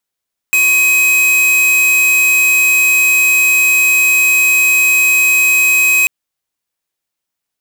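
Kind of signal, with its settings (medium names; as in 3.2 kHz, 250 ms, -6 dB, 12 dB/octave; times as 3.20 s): tone square 2.53 kHz -10.5 dBFS 5.54 s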